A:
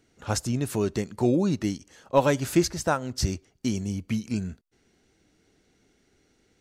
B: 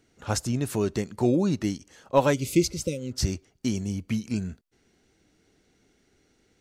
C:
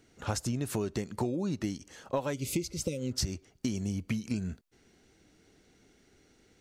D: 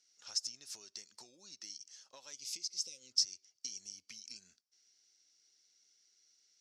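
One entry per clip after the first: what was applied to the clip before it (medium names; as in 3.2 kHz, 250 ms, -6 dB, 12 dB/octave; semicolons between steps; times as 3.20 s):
spectral replace 2.36–3.10 s, 560–2000 Hz after
compression 16:1, threshold -30 dBFS, peak gain reduction 17 dB; trim +2 dB
band-pass filter 5.4 kHz, Q 5.6; trim +6.5 dB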